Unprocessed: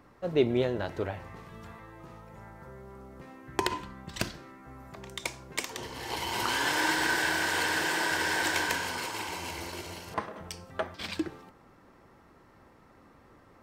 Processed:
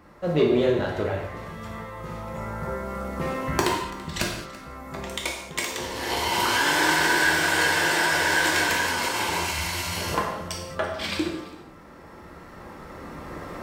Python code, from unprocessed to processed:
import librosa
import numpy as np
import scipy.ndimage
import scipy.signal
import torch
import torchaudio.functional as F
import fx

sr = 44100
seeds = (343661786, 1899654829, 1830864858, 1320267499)

p1 = fx.recorder_agc(x, sr, target_db=-20.5, rise_db_per_s=6.3, max_gain_db=30)
p2 = fx.peak_eq(p1, sr, hz=400.0, db=-13.5, octaves=1.6, at=(9.43, 9.97))
p3 = 10.0 ** (-16.5 / 20.0) * np.tanh(p2 / 10.0 ** (-16.5 / 20.0))
p4 = p3 + fx.echo_single(p3, sr, ms=334, db=-19.5, dry=0)
p5 = fx.rev_gated(p4, sr, seeds[0], gate_ms=250, shape='falling', drr_db=-1.5)
y = p5 * 10.0 ** (3.5 / 20.0)